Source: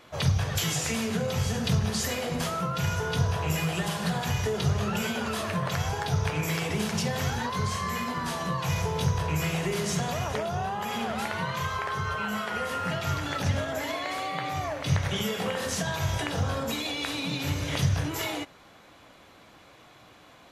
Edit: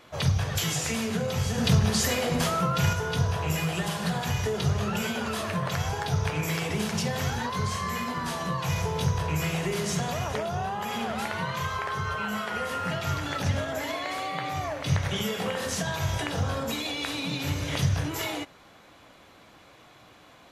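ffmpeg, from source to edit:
-filter_complex "[0:a]asplit=3[s0][s1][s2];[s0]atrim=end=1.582[s3];[s1]atrim=start=1.578:end=2.932,asetpts=PTS-STARTPTS,volume=1.58[s4];[s2]atrim=start=2.928[s5];[s3][s4]acrossfade=d=0.004:c1=hsin:c2=hsin[s6];[s6][s5]acrossfade=d=0.004:c1=hsin:c2=hsin"

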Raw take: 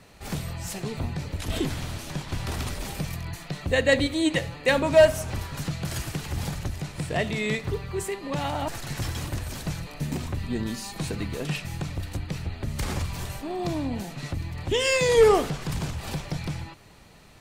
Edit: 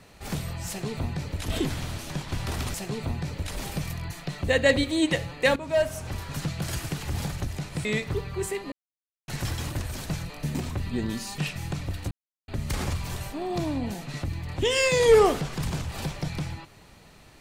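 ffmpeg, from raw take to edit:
-filter_complex "[0:a]asplit=10[s0][s1][s2][s3][s4][s5][s6][s7][s8][s9];[s0]atrim=end=2.742[s10];[s1]atrim=start=0.678:end=1.452[s11];[s2]atrim=start=2.738:end=4.79,asetpts=PTS-STARTPTS,afade=t=out:st=2.048:d=0.004:c=hsin:silence=0.188365[s12];[s3]atrim=start=4.79:end=7.082,asetpts=PTS-STARTPTS,afade=t=in:d=0.81:silence=0.188365[s13];[s4]atrim=start=7.418:end=8.29,asetpts=PTS-STARTPTS,afade=t=out:st=0.868:d=0.004:c=hsin[s14];[s5]atrim=start=8.29:end=8.85,asetpts=PTS-STARTPTS,volume=0[s15];[s6]atrim=start=8.85:end=10.952,asetpts=PTS-STARTPTS,afade=t=in:d=0.004:c=hsin[s16];[s7]atrim=start=11.468:end=12.2,asetpts=PTS-STARTPTS,afade=t=out:st=0.728:d=0.004:c=hsin[s17];[s8]atrim=start=12.2:end=12.57,asetpts=PTS-STARTPTS,volume=0[s18];[s9]atrim=start=12.57,asetpts=PTS-STARTPTS,afade=t=in:d=0.004:c=hsin[s19];[s10][s11]acrossfade=d=0.004:c1=hsin:c2=hsin[s20];[s12][s13]concat=n=2:v=0:a=1[s21];[s20][s21]acrossfade=d=0.004:c1=hsin:c2=hsin[s22];[s14][s15][s16]concat=n=3:v=0:a=1[s23];[s22][s23]acrossfade=d=0.004:c1=hsin:c2=hsin[s24];[s17][s18][s19]concat=n=3:v=0:a=1[s25];[s24][s25]acrossfade=d=0.004:c1=hsin:c2=hsin"

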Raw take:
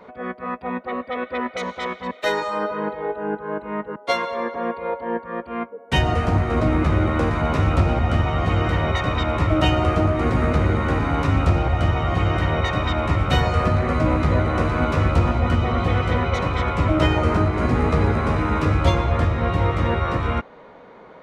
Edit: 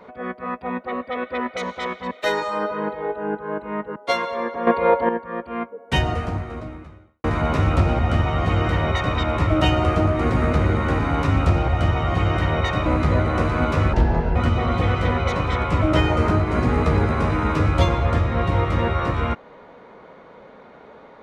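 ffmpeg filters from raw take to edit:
-filter_complex "[0:a]asplit=7[s0][s1][s2][s3][s4][s5][s6];[s0]atrim=end=4.672[s7];[s1]atrim=start=4.668:end=5.092,asetpts=PTS-STARTPTS,volume=2.99[s8];[s2]atrim=start=5.088:end=7.24,asetpts=PTS-STARTPTS,afade=t=out:st=0.812:d=1.34:c=qua[s9];[s3]atrim=start=7.24:end=12.862,asetpts=PTS-STARTPTS,afade=t=in:d=0.004:c=hsin[s10];[s4]atrim=start=14.058:end=15.134[s11];[s5]atrim=start=15.13:end=15.42,asetpts=PTS-STARTPTS,asetrate=29988,aresample=44100,atrim=end_sample=18807,asetpts=PTS-STARTPTS[s12];[s6]atrim=start=15.416[s13];[s7][s8]acrossfade=d=0.004:c1=hsin:c2=hsin[s14];[s9][s10]concat=n=2:v=0:a=1[s15];[s14][s15]acrossfade=d=0.004:c1=hsin:c2=hsin[s16];[s16][s11]acrossfade=d=0.004:c1=hsin:c2=hsin[s17];[s17][s12]acrossfade=d=0.004:c1=hsin:c2=hsin[s18];[s18][s13]acrossfade=d=0.004:c1=hsin:c2=hsin"

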